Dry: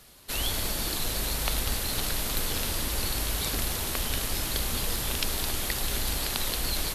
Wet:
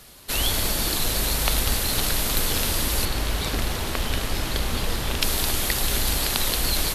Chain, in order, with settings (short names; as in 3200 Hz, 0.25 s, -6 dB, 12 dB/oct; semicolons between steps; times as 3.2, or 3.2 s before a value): 3.05–5.22 high shelf 5700 Hz -11.5 dB; gain +6 dB